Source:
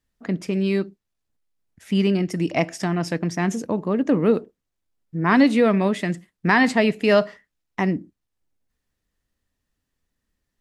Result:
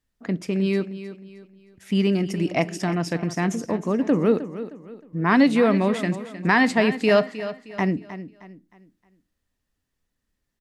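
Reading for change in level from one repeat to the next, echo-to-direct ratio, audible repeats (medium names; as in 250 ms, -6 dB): -9.0 dB, -12.5 dB, 3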